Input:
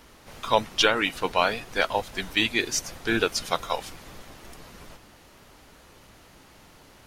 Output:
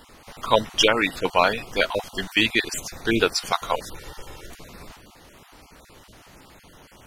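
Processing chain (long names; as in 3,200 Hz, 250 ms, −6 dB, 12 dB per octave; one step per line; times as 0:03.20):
time-frequency cells dropped at random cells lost 24%
0:03.92–0:04.47: comb filter 2.2 ms, depth 65%
level +4 dB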